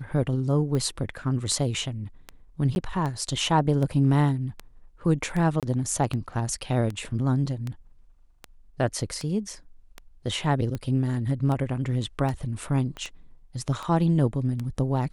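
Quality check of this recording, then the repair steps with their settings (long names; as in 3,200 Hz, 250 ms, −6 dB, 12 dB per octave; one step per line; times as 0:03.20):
scratch tick 78 rpm −19 dBFS
0:02.75–0:02.76: drop-out 11 ms
0:05.60–0:05.63: drop-out 27 ms
0:12.97: click −24 dBFS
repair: click removal
repair the gap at 0:02.75, 11 ms
repair the gap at 0:05.60, 27 ms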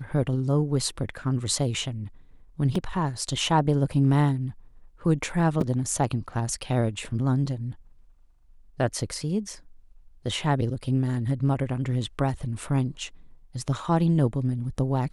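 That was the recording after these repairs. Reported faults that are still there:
0:12.97: click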